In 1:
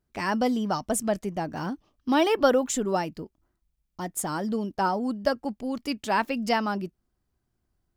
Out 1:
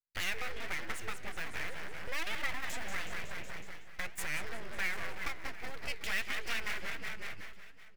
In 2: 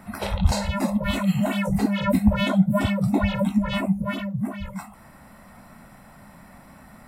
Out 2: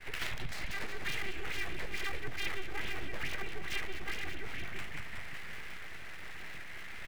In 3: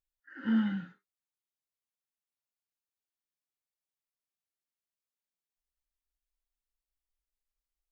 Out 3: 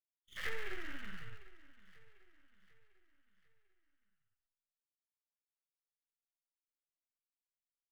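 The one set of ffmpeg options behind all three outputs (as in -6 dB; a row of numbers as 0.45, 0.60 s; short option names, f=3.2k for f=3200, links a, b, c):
-filter_complex "[0:a]lowpass=3.1k,asplit=2[a][b];[b]asplit=7[c][d][e][f][g][h][i];[c]adelay=185,afreqshift=-43,volume=-7dB[j];[d]adelay=370,afreqshift=-86,volume=-12.4dB[k];[e]adelay=555,afreqshift=-129,volume=-17.7dB[l];[f]adelay=740,afreqshift=-172,volume=-23.1dB[m];[g]adelay=925,afreqshift=-215,volume=-28.4dB[n];[h]adelay=1110,afreqshift=-258,volume=-33.8dB[o];[i]adelay=1295,afreqshift=-301,volume=-39.1dB[p];[j][k][l][m][n][o][p]amix=inputs=7:normalize=0[q];[a][q]amix=inputs=2:normalize=0,acompressor=threshold=-38dB:ratio=4,agate=range=-33dB:threshold=-44dB:ratio=3:detection=peak,aeval=exprs='abs(val(0))':c=same,aemphasis=mode=production:type=75kf,asplit=2[r][s];[s]aecho=0:1:747|1494|2241|2988:0.119|0.0535|0.0241|0.0108[t];[r][t]amix=inputs=2:normalize=0,flanger=delay=5:depth=8.9:regen=85:speed=1.4:shape=triangular,equalizer=f=250:t=o:w=1:g=-6,equalizer=f=500:t=o:w=1:g=-3,equalizer=f=1k:t=o:w=1:g=-6,equalizer=f=2k:t=o:w=1:g=11,volume=5dB"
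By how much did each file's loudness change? -12.0, -17.0, -13.5 LU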